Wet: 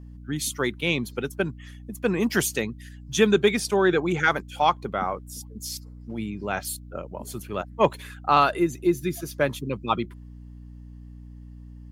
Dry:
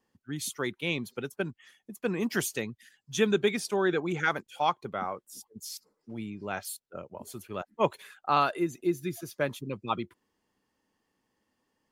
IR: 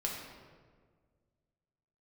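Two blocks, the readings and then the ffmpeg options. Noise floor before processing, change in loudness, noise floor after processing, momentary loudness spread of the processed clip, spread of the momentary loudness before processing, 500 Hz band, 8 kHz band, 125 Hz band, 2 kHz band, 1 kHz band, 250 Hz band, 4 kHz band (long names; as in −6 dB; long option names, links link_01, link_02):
−80 dBFS, +6.0 dB, −43 dBFS, 24 LU, 16 LU, +6.0 dB, +6.5 dB, +7.0 dB, +6.0 dB, +6.0 dB, +6.5 dB, +6.0 dB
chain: -af "acontrast=61,aeval=exprs='val(0)+0.00891*(sin(2*PI*60*n/s)+sin(2*PI*2*60*n/s)/2+sin(2*PI*3*60*n/s)/3+sin(2*PI*4*60*n/s)/4+sin(2*PI*5*60*n/s)/5)':channel_layout=same"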